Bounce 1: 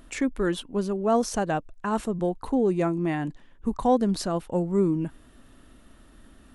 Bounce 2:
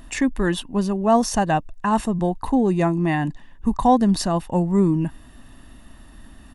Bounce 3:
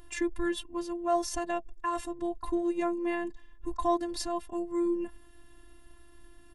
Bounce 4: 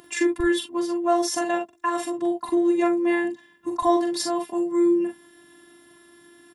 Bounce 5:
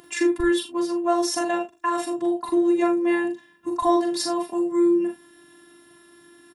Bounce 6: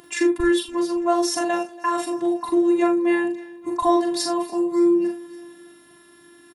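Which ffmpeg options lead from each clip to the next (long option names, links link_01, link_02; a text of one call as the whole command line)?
ffmpeg -i in.wav -af "aecho=1:1:1.1:0.49,volume=5.5dB" out.wav
ffmpeg -i in.wav -af "afftfilt=real='hypot(re,im)*cos(PI*b)':imag='0':win_size=512:overlap=0.75,bandreject=frequency=670:width=19,volume=-6dB" out.wav
ffmpeg -i in.wav -filter_complex "[0:a]acrossover=split=140[link_01][link_02];[link_01]acrusher=bits=3:mix=0:aa=0.5[link_03];[link_03][link_02]amix=inputs=2:normalize=0,aecho=1:1:43|60:0.562|0.224,volume=7.5dB" out.wav
ffmpeg -i in.wav -filter_complex "[0:a]asplit=2[link_01][link_02];[link_02]adelay=37,volume=-9dB[link_03];[link_01][link_03]amix=inputs=2:normalize=0" out.wav
ffmpeg -i in.wav -af "aecho=1:1:284|568|852|1136:0.0841|0.0488|0.0283|0.0164,volume=1.5dB" out.wav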